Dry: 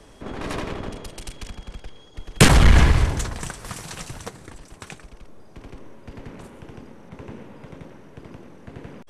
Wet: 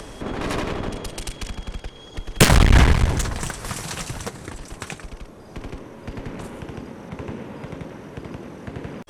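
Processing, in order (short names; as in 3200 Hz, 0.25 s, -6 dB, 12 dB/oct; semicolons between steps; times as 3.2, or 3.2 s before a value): in parallel at -2 dB: upward compressor, threshold -26 dBFS; on the sum: one-sided clip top -20.5 dBFS; gain -1 dB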